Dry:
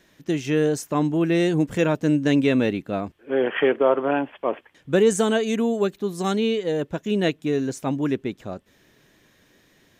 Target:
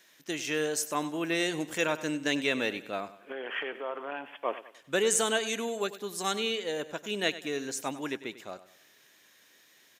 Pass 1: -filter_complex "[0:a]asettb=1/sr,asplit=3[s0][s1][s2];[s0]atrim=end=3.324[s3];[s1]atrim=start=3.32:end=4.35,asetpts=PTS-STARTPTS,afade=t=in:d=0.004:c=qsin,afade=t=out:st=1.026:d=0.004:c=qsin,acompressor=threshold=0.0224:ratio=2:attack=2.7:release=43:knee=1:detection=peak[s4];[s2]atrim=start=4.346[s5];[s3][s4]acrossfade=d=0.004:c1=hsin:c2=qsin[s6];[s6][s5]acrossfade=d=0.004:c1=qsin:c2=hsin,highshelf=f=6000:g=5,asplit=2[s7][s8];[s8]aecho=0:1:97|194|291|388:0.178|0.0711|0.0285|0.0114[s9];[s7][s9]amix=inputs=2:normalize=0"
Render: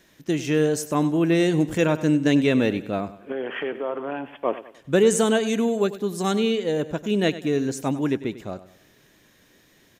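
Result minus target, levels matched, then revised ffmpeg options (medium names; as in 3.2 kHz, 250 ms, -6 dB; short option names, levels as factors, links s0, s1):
1 kHz band -3.5 dB
-filter_complex "[0:a]asettb=1/sr,asplit=3[s0][s1][s2];[s0]atrim=end=3.324[s3];[s1]atrim=start=3.32:end=4.35,asetpts=PTS-STARTPTS,afade=t=in:d=0.004:c=qsin,afade=t=out:st=1.026:d=0.004:c=qsin,acompressor=threshold=0.0224:ratio=2:attack=2.7:release=43:knee=1:detection=peak[s4];[s2]atrim=start=4.346[s5];[s3][s4]acrossfade=d=0.004:c1=hsin:c2=qsin[s6];[s6][s5]acrossfade=d=0.004:c1=qsin:c2=hsin,highpass=f=1300:p=1,highshelf=f=6000:g=5,asplit=2[s7][s8];[s8]aecho=0:1:97|194|291|388:0.178|0.0711|0.0285|0.0114[s9];[s7][s9]amix=inputs=2:normalize=0"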